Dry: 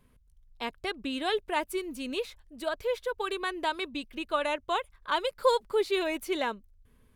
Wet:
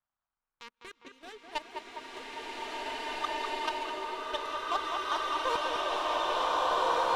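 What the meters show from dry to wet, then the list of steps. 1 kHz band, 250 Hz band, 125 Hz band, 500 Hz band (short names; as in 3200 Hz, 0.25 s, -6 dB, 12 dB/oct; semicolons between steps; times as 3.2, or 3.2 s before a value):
+3.0 dB, -9.5 dB, n/a, -6.0 dB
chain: bell 1100 Hz +10.5 dB 0.9 oct; notches 50/100/150/200/250 Hz; in parallel at -2 dB: compressor 10:1, threshold -37 dBFS, peak gain reduction 24.5 dB; on the sum: band noise 500–1500 Hz -51 dBFS; power-law curve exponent 2; LFO notch saw up 0.36 Hz 440–3100 Hz; level quantiser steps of 16 dB; tape echo 0.204 s, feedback 75%, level -4 dB, low-pass 2100 Hz; bloom reverb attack 2.04 s, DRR -9 dB; gain +1.5 dB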